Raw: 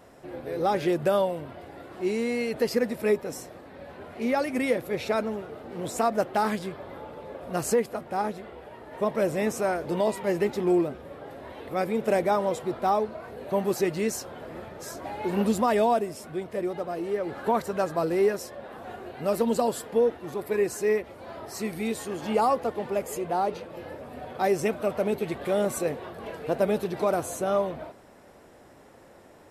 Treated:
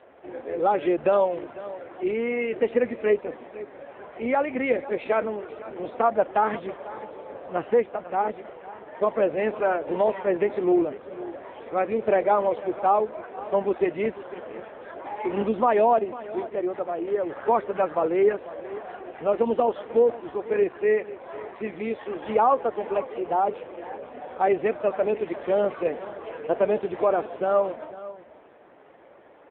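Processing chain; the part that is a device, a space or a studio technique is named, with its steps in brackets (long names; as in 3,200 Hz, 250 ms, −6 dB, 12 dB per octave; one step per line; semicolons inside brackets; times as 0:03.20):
satellite phone (band-pass filter 320–3,200 Hz; single-tap delay 498 ms −16 dB; level +4.5 dB; AMR narrowband 5.9 kbit/s 8,000 Hz)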